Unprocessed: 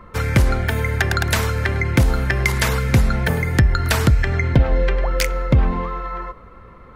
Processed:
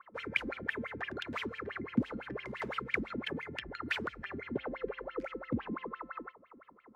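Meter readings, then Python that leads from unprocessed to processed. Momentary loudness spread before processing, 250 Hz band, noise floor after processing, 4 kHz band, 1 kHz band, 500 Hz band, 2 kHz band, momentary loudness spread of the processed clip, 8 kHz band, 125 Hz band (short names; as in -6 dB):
5 LU, -14.0 dB, -62 dBFS, -16.5 dB, -16.5 dB, -16.0 dB, -15.0 dB, 7 LU, under -30 dB, -30.0 dB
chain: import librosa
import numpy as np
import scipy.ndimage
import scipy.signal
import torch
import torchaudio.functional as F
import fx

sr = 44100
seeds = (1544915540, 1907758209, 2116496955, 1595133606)

y = fx.wah_lfo(x, sr, hz=5.9, low_hz=220.0, high_hz=3200.0, q=11.0)
y = fx.dynamic_eq(y, sr, hz=710.0, q=2.7, threshold_db=-54.0, ratio=4.0, max_db=-6)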